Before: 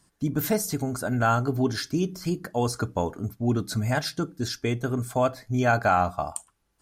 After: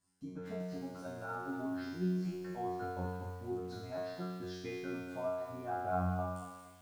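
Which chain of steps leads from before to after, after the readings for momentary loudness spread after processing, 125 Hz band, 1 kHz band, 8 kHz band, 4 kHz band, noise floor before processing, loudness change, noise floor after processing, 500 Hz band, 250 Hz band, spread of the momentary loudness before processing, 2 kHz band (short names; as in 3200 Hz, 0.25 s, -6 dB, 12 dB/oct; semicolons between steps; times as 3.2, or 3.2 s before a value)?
8 LU, -14.5 dB, -13.5 dB, -25.5 dB, -19.5 dB, -72 dBFS, -13.5 dB, -55 dBFS, -12.0 dB, -12.0 dB, 7 LU, -16.5 dB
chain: treble ducked by the level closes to 950 Hz, closed at -20 dBFS; resonator 91 Hz, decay 1.3 s, harmonics all, mix 100%; lo-fi delay 0.235 s, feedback 35%, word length 10-bit, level -8 dB; gain +3.5 dB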